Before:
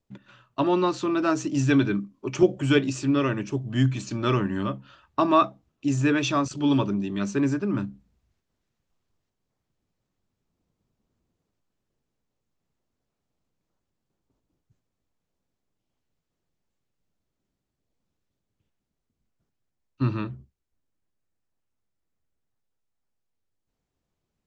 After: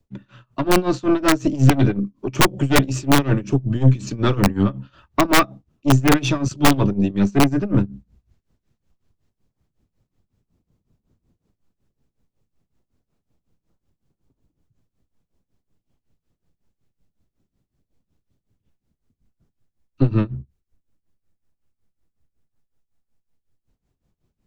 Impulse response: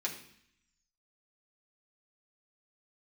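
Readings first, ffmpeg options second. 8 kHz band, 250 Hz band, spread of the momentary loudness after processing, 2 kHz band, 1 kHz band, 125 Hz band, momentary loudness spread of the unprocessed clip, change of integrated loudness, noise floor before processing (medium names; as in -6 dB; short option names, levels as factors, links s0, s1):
+10.0 dB, +5.0 dB, 10 LU, +7.5 dB, +5.0 dB, +8.5 dB, 10 LU, +6.0 dB, -82 dBFS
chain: -filter_complex "[0:a]lowshelf=f=310:g=11,aeval=exprs='0.794*(cos(1*acos(clip(val(0)/0.794,-1,1)))-cos(1*PI/2))+0.178*(cos(4*acos(clip(val(0)/0.794,-1,1)))-cos(4*PI/2))+0.141*(cos(5*acos(clip(val(0)/0.794,-1,1)))-cos(5*PI/2))+0.01*(cos(6*acos(clip(val(0)/0.794,-1,1)))-cos(6*PI/2))+0.0447*(cos(8*acos(clip(val(0)/0.794,-1,1)))-cos(8*PI/2))':c=same,tremolo=f=5.4:d=0.89,acrossover=split=140|1000|2500[s0][s1][s2][s3];[s1]aeval=exprs='(mod(2.51*val(0)+1,2)-1)/2.51':c=same[s4];[s0][s4][s2][s3]amix=inputs=4:normalize=0"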